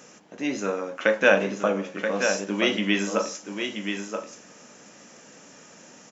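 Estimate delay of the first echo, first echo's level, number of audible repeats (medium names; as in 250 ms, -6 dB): 979 ms, -6.5 dB, 1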